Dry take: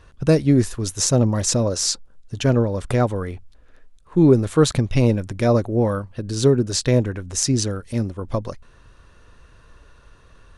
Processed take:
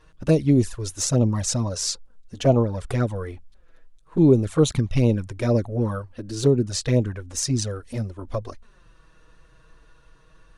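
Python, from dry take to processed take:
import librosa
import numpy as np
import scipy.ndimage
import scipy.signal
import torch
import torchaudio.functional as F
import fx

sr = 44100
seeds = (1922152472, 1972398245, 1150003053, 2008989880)

y = fx.peak_eq(x, sr, hz=fx.line((2.36, 400.0), (2.78, 2000.0)), db=12.5, octaves=0.53, at=(2.36, 2.78), fade=0.02)
y = fx.env_flanger(y, sr, rest_ms=6.7, full_db=-11.0)
y = y * 10.0 ** (-1.5 / 20.0)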